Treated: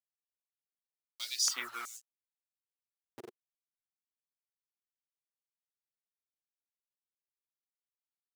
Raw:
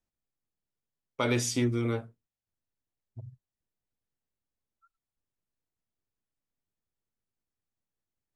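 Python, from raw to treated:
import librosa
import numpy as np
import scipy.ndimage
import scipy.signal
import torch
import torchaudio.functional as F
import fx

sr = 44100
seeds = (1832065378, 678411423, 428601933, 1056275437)

y = fx.delta_hold(x, sr, step_db=-37.0)
y = fx.dereverb_blind(y, sr, rt60_s=0.53)
y = fx.filter_held_highpass(y, sr, hz=2.7, low_hz=370.0, high_hz=6900.0)
y = y * librosa.db_to_amplitude(-1.5)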